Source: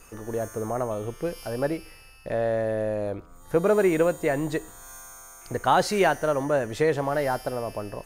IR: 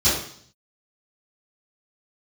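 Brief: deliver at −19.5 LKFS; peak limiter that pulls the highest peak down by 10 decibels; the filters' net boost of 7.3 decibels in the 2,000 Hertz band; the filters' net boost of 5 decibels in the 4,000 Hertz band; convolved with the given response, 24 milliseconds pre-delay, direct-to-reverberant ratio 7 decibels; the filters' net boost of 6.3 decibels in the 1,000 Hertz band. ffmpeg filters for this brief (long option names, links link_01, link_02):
-filter_complex "[0:a]equalizer=frequency=1000:width_type=o:gain=7,equalizer=frequency=2000:width_type=o:gain=6,equalizer=frequency=4000:width_type=o:gain=4,alimiter=limit=-12.5dB:level=0:latency=1,asplit=2[link_01][link_02];[1:a]atrim=start_sample=2205,adelay=24[link_03];[link_02][link_03]afir=irnorm=-1:irlink=0,volume=-24dB[link_04];[link_01][link_04]amix=inputs=2:normalize=0,volume=4.5dB"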